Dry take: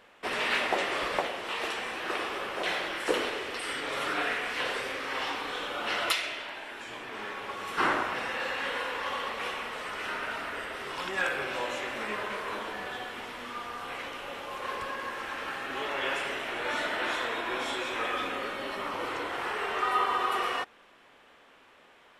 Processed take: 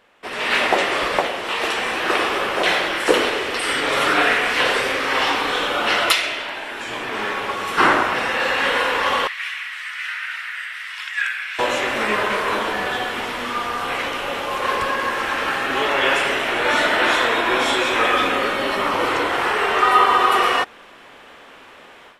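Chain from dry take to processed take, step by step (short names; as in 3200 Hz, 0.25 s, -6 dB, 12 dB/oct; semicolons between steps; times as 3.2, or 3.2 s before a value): AGC gain up to 14 dB; 9.27–11.59 ladder high-pass 1600 Hz, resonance 50%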